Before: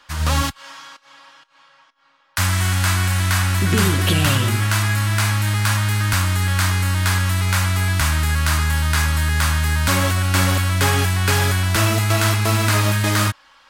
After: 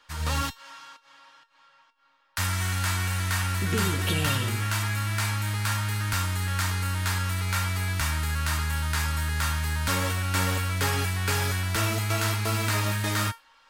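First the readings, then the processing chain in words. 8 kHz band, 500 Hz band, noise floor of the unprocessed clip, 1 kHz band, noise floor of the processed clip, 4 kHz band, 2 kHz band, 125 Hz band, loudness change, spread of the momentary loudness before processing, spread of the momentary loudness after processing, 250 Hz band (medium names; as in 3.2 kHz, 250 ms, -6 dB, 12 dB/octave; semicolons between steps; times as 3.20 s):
-8.0 dB, -8.5 dB, -54 dBFS, -7.5 dB, -61 dBFS, -8.0 dB, -8.0 dB, -9.5 dB, -8.5 dB, 2 LU, 3 LU, -9.5 dB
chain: feedback comb 460 Hz, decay 0.24 s, harmonics all, mix 80%; trim +3.5 dB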